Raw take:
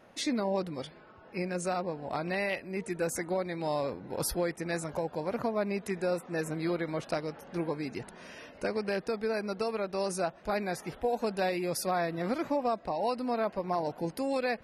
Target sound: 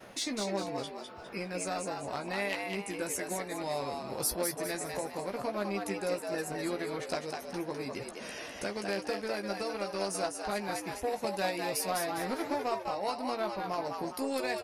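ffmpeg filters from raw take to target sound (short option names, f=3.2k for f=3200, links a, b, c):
-filter_complex "[0:a]aeval=exprs='0.133*(cos(1*acos(clip(val(0)/0.133,-1,1)))-cos(1*PI/2))+0.0211*(cos(3*acos(clip(val(0)/0.133,-1,1)))-cos(3*PI/2))':c=same,highshelf=f=3.7k:g=9,acompressor=mode=upward:threshold=-32dB:ratio=2.5,agate=range=-33dB:threshold=-42dB:ratio=3:detection=peak,asplit=2[a][b];[b]adelay=15,volume=-7dB[c];[a][c]amix=inputs=2:normalize=0,asplit=6[d][e][f][g][h][i];[e]adelay=203,afreqshift=100,volume=-4.5dB[j];[f]adelay=406,afreqshift=200,volume=-12.7dB[k];[g]adelay=609,afreqshift=300,volume=-20.9dB[l];[h]adelay=812,afreqshift=400,volume=-29dB[m];[i]adelay=1015,afreqshift=500,volume=-37.2dB[n];[d][j][k][l][m][n]amix=inputs=6:normalize=0,volume=-1.5dB"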